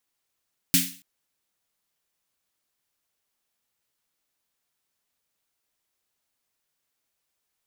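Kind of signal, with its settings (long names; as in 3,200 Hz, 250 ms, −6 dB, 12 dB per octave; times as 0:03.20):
synth snare length 0.28 s, tones 180 Hz, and 270 Hz, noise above 2,000 Hz, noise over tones 6 dB, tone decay 0.36 s, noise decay 0.40 s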